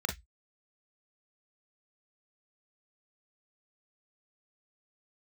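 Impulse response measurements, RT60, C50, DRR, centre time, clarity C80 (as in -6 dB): 0.10 s, 10.5 dB, 3.0 dB, 17 ms, 25.0 dB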